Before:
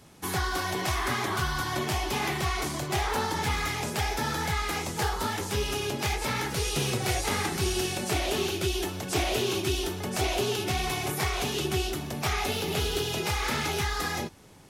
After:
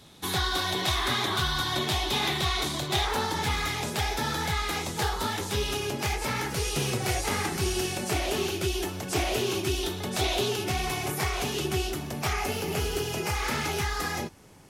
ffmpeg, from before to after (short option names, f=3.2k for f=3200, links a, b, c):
-af "asetnsamples=n=441:p=0,asendcmd='3.05 equalizer g 5;5.77 equalizer g -2.5;9.83 equalizer g 7.5;10.48 equalizer g -2.5;12.33 equalizer g -11;13.35 equalizer g -3.5',equalizer=f=3.7k:t=o:w=0.34:g=13.5"